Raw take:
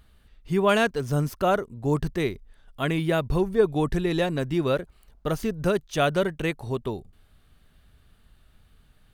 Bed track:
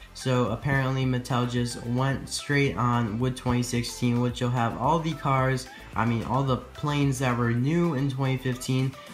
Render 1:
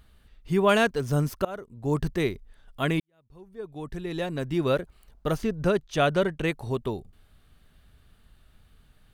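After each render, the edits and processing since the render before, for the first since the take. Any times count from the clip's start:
0:01.45–0:02.05: fade in, from −22.5 dB
0:03.00–0:04.71: fade in quadratic
0:05.36–0:06.47: high-shelf EQ 7,700 Hz → 11,000 Hz −11 dB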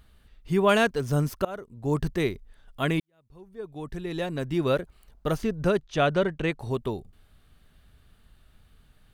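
0:05.81–0:06.60: high-frequency loss of the air 55 metres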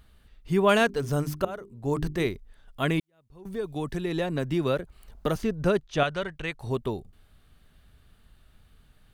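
0:00.79–0:02.27: mains-hum notches 50/100/150/200/250/300/350/400 Hz
0:03.45–0:05.36: multiband upward and downward compressor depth 70%
0:06.03–0:06.64: parametric band 290 Hz −10.5 dB 2.8 octaves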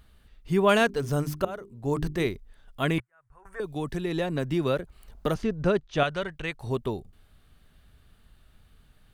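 0:02.98–0:03.60: drawn EQ curve 120 Hz 0 dB, 210 Hz −28 dB, 610 Hz −2 dB, 870 Hz +3 dB, 1,500 Hz +13 dB, 2,600 Hz −4 dB, 3,800 Hz −19 dB, 8,600 Hz 0 dB, 14,000 Hz −16 dB
0:05.34–0:05.96: high-frequency loss of the air 60 metres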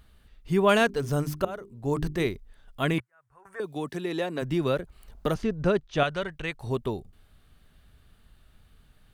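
0:02.93–0:04.41: high-pass filter 88 Hz → 280 Hz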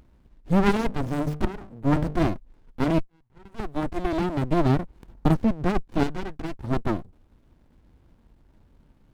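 hollow resonant body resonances 310/900 Hz, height 13 dB, ringing for 20 ms
windowed peak hold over 65 samples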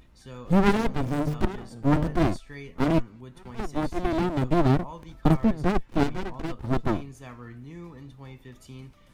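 mix in bed track −18 dB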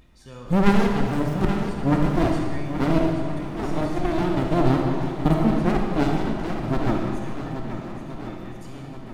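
on a send: feedback echo with a long and a short gap by turns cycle 1,377 ms, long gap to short 1.5 to 1, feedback 39%, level −9.5 dB
on the sum: comb and all-pass reverb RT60 1.9 s, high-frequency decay 0.9×, pre-delay 5 ms, DRR 1 dB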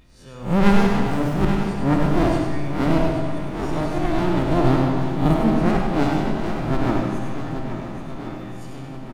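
peak hold with a rise ahead of every peak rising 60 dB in 0.41 s
single-tap delay 100 ms −6 dB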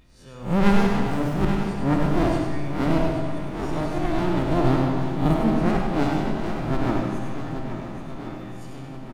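level −2.5 dB

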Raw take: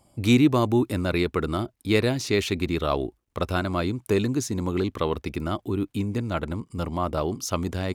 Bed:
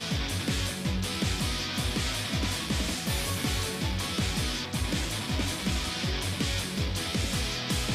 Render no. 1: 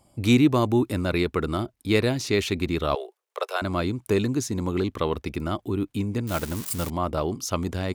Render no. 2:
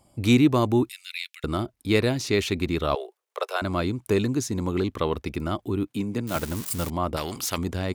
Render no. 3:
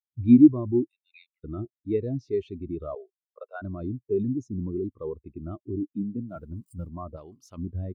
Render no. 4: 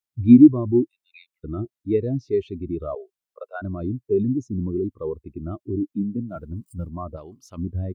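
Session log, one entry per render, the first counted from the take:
0:02.95–0:03.62: Butterworth high-pass 410 Hz 72 dB per octave; 0:06.27–0:06.90: spike at every zero crossing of −21 dBFS
0:00.89–0:01.44: Butterworth high-pass 2,200 Hz; 0:05.87–0:06.36: high-pass filter 120 Hz 24 dB per octave; 0:07.16–0:07.58: every bin compressed towards the loudest bin 2 to 1
in parallel at −3 dB: compressor whose output falls as the input rises −26 dBFS, ratio −0.5; on the sum: every bin expanded away from the loudest bin 2.5 to 1
level +5 dB; brickwall limiter −2 dBFS, peak gain reduction 2 dB

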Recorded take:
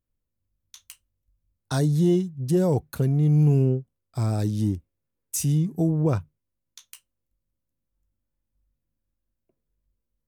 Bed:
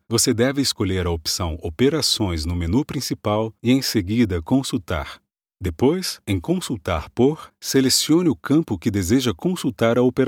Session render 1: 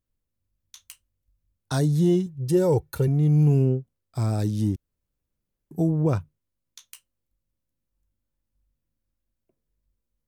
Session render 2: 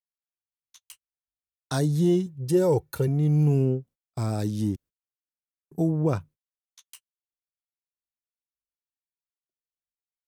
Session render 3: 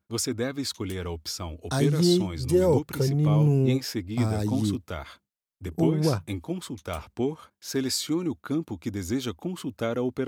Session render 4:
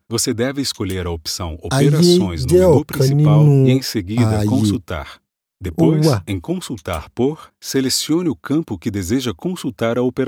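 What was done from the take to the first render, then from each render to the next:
0:02.26–0:03.08: comb filter 2.2 ms; 0:04.76–0:05.71: fill with room tone
low-shelf EQ 79 Hz −11.5 dB; noise gate −46 dBFS, range −30 dB
mix in bed −10.5 dB
level +10 dB; brickwall limiter −2 dBFS, peak gain reduction 2 dB

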